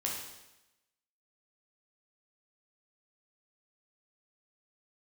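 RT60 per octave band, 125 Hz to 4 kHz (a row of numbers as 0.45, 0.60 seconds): 0.95, 0.95, 0.95, 0.95, 0.95, 0.95 seconds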